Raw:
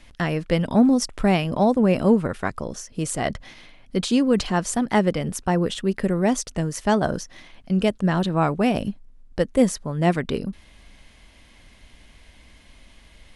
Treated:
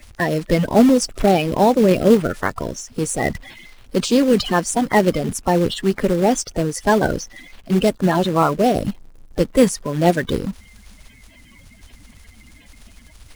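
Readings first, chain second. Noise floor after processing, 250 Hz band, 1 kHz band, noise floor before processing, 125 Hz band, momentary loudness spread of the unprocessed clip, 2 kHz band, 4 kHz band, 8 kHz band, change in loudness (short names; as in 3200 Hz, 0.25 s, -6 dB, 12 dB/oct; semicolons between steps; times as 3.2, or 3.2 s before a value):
-48 dBFS, +3.0 dB, +5.5 dB, -52 dBFS, +2.0 dB, 11 LU, +4.5 dB, +4.5 dB, +5.0 dB, +4.0 dB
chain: bin magnitudes rounded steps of 30 dB; in parallel at -3 dB: companded quantiser 4-bit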